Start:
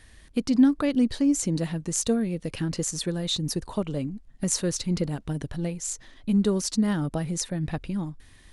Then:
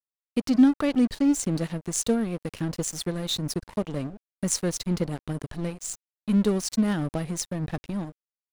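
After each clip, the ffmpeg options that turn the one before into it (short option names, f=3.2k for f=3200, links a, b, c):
-af "aeval=exprs='sgn(val(0))*max(abs(val(0))-0.0141,0)':c=same,volume=1.5dB"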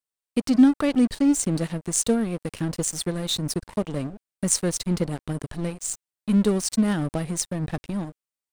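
-af "equalizer=f=8.6k:w=5:g=7.5,volume=2dB"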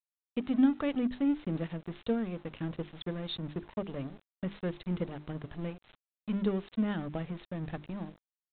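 -af "bandreject=f=50:t=h:w=6,bandreject=f=100:t=h:w=6,bandreject=f=150:t=h:w=6,bandreject=f=200:t=h:w=6,bandreject=f=250:t=h:w=6,bandreject=f=300:t=h:w=6,bandreject=f=350:t=h:w=6,bandreject=f=400:t=h:w=6,aresample=8000,aeval=exprs='val(0)*gte(abs(val(0)),0.00631)':c=same,aresample=44100,volume=-8.5dB"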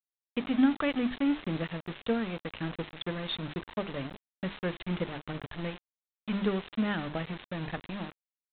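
-af "equalizer=f=2k:t=o:w=2.7:g=8,aresample=8000,acrusher=bits=6:mix=0:aa=0.000001,aresample=44100"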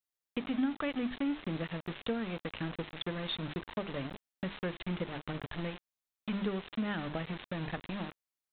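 -af "acompressor=threshold=-38dB:ratio=2,volume=2dB"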